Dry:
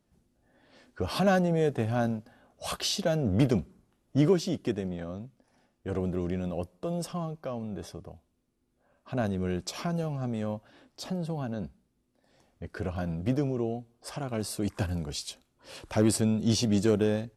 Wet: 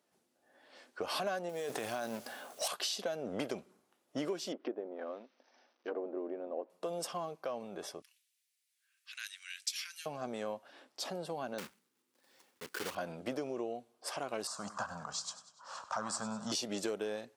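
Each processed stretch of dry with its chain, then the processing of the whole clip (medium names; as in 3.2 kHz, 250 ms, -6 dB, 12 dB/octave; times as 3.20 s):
1.49–2.68 s: companding laws mixed up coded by mu + treble shelf 3.3 kHz +10 dB + compressor with a negative ratio -30 dBFS
4.52–6.70 s: CVSD coder 64 kbps + low-pass that closes with the level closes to 790 Hz, closed at -28.5 dBFS + brick-wall FIR band-pass 210–6300 Hz
8.02–10.06 s: de-esser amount 30% + steep high-pass 1.8 kHz + treble shelf 2.8 kHz +6.5 dB
11.58–12.97 s: block-companded coder 3-bit + peaking EQ 660 Hz -12.5 dB 0.44 oct
14.47–16.52 s: FFT filter 210 Hz 0 dB, 360 Hz -22 dB, 610 Hz -3 dB, 1.2 kHz +12 dB, 2.3 kHz -15 dB, 7.2 kHz +1 dB, 11 kHz -24 dB + modulated delay 98 ms, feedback 54%, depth 75 cents, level -15 dB
whole clip: high-pass 460 Hz 12 dB/octave; compression 6:1, threshold -35 dBFS; trim +1.5 dB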